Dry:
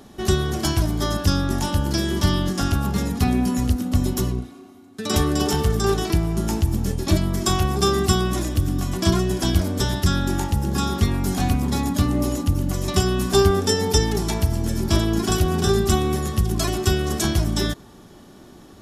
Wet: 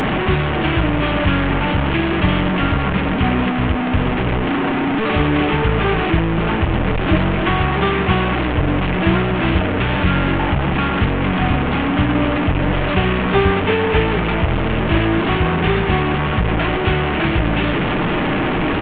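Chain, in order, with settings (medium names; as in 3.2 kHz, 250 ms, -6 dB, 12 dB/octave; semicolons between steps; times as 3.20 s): one-bit delta coder 16 kbps, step -15 dBFS; comb 6.5 ms, depth 31%; trim +3 dB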